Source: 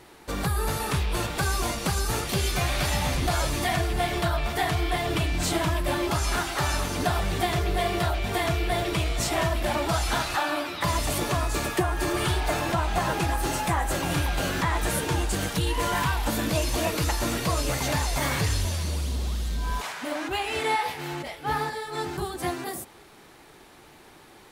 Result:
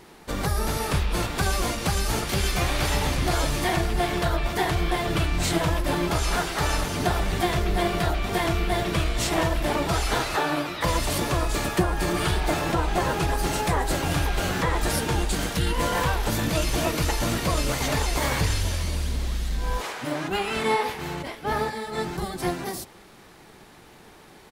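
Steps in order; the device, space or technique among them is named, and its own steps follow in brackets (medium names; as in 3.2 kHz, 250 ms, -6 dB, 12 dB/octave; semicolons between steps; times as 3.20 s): octave pedal (harmony voices -12 st -3 dB)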